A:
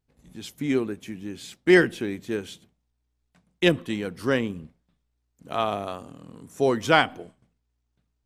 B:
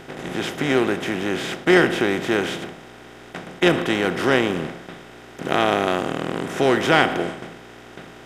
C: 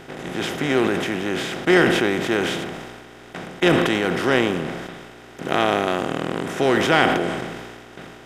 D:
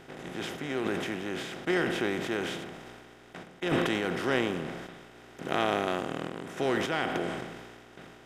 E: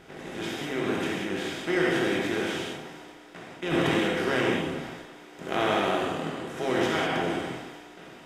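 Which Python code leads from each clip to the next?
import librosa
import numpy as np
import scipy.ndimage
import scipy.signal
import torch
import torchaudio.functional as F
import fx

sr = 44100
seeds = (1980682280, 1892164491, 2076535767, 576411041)

y1 = fx.bin_compress(x, sr, power=0.4)
y1 = y1 * 10.0 ** (-1.0 / 20.0)
y2 = fx.sustainer(y1, sr, db_per_s=34.0)
y2 = y2 * 10.0 ** (-1.0 / 20.0)
y3 = fx.tremolo_random(y2, sr, seeds[0], hz=3.5, depth_pct=55)
y3 = y3 * 10.0 ** (-8.0 / 20.0)
y4 = fx.rev_gated(y3, sr, seeds[1], gate_ms=220, shape='flat', drr_db=-3.5)
y4 = y4 * 10.0 ** (-1.5 / 20.0)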